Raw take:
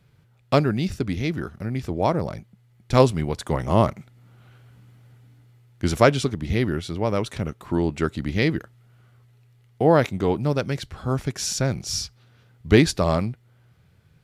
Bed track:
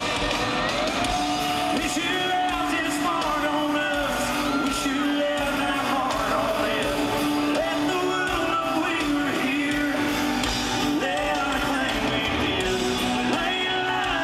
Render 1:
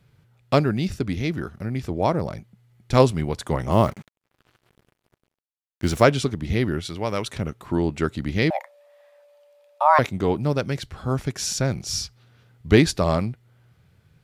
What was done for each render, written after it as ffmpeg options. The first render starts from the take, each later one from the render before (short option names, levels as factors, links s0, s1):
-filter_complex "[0:a]asettb=1/sr,asplit=3[s0][s1][s2];[s0]atrim=end=3.724[s3];[s1]atrim=start=3.72:end=6.05,asetpts=PTS-STARTPTS,afade=t=in:d=0.004:c=qsin,afade=t=out:st=2.326:d=0.004:c=qsin,acrusher=bits=6:mix=0:aa=0.5[s4];[s2]atrim=start=6.046[s5];[s3][s4]acrossfade=d=0.004:c1=hsin:c2=qsin[s6];[s6][s5]acrossfade=d=0.004:c1=qsin:c2=hsin,asettb=1/sr,asplit=3[s7][s8][s9];[s7]atrim=end=6.854[s10];[s8]atrim=start=6.85:end=7.28,asetpts=PTS-STARTPTS,afade=t=in:d=0.004:c=qsin,afade=t=out:st=0.426:d=0.004:c=qsin,tiltshelf=f=1100:g=-4.5[s11];[s9]atrim=start=7.276[s12];[s10][s11]acrossfade=d=0.004:c1=hsin:c2=qsin[s13];[s13][s12]acrossfade=d=0.004:c1=qsin:c2=hsin,asettb=1/sr,asplit=3[s14][s15][s16];[s14]atrim=end=8.504[s17];[s15]atrim=start=8.5:end=9.99,asetpts=PTS-STARTPTS,afade=t=in:d=0.004:c=qsin,afade=t=out:st=1.486:d=0.004:c=qsin,afreqshift=460[s18];[s16]atrim=start=9.986[s19];[s17][s18]acrossfade=d=0.004:c1=hsin:c2=qsin[s20];[s20][s19]acrossfade=d=0.004:c1=qsin:c2=hsin"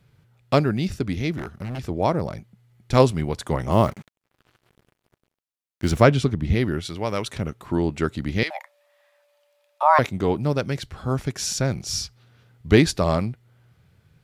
-filter_complex "[0:a]asplit=3[s0][s1][s2];[s0]afade=t=out:st=1.37:d=0.02[s3];[s1]aeval=exprs='0.0596*(abs(mod(val(0)/0.0596+3,4)-2)-1)':c=same,afade=t=in:st=1.37:d=0.02,afade=t=out:st=1.78:d=0.02[s4];[s2]afade=t=in:st=1.78:d=0.02[s5];[s3][s4][s5]amix=inputs=3:normalize=0,asettb=1/sr,asplit=3[s6][s7][s8];[s6]atrim=end=5.914[s9];[s7]atrim=start=5.91:end=6.55,asetpts=PTS-STARTPTS,afade=t=in:d=0.004:c=qsin,afade=t=out:st=0.636:d=0.004:c=qsin,bass=f=250:g=5,treble=f=4000:g=-5[s10];[s8]atrim=start=6.546[s11];[s9][s10]acrossfade=d=0.004:c1=hsin:c2=qsin[s12];[s12][s11]acrossfade=d=0.004:c1=qsin:c2=hsin,asettb=1/sr,asplit=3[s13][s14][s15];[s13]atrim=end=8.434[s16];[s14]atrim=start=8.43:end=9.83,asetpts=PTS-STARTPTS,afade=t=in:d=0.004:c=qsin,afade=t=out:st=1.396:d=0.004:c=qsin,highpass=1000[s17];[s15]atrim=start=9.826[s18];[s16][s17]acrossfade=d=0.004:c1=hsin:c2=qsin[s19];[s19][s18]acrossfade=d=0.004:c1=qsin:c2=hsin"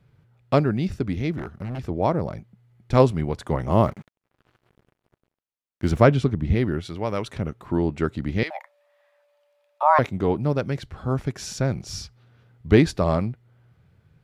-af "highshelf=f=2900:g=-10"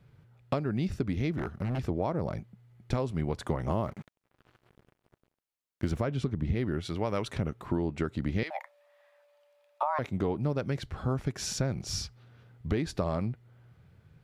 -af "alimiter=limit=0.266:level=0:latency=1:release=256,acompressor=threshold=0.0501:ratio=6"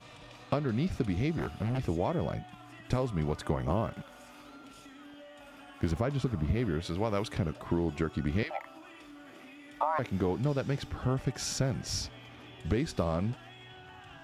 -filter_complex "[1:a]volume=0.0447[s0];[0:a][s0]amix=inputs=2:normalize=0"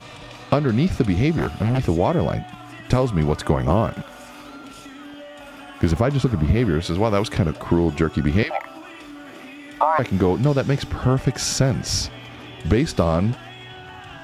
-af "volume=3.76"